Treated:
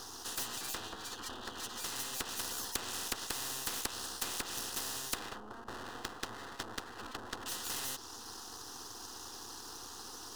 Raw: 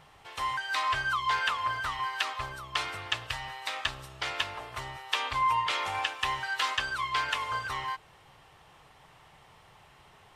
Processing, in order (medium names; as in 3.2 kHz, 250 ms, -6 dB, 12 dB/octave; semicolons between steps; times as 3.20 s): split-band scrambler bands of 2 kHz; low-pass that closes with the level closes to 480 Hz, closed at -25 dBFS; 5.19–7.46 s: low-pass 1.3 kHz 24 dB/octave; full-wave rectifier; static phaser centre 600 Hz, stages 6; spectrum-flattening compressor 4:1; trim +4.5 dB